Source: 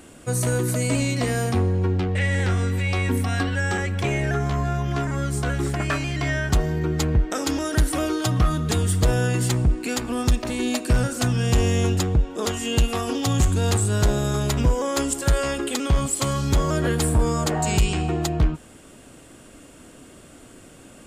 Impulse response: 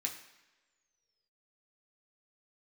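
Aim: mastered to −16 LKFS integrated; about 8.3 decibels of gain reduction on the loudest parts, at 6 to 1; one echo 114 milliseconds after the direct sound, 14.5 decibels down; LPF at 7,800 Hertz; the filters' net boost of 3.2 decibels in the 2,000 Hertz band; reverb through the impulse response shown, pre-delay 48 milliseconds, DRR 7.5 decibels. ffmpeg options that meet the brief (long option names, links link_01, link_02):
-filter_complex "[0:a]lowpass=7800,equalizer=frequency=2000:width_type=o:gain=4,acompressor=threshold=-23dB:ratio=6,aecho=1:1:114:0.188,asplit=2[link_01][link_02];[1:a]atrim=start_sample=2205,adelay=48[link_03];[link_02][link_03]afir=irnorm=-1:irlink=0,volume=-8.5dB[link_04];[link_01][link_04]amix=inputs=2:normalize=0,volume=10.5dB"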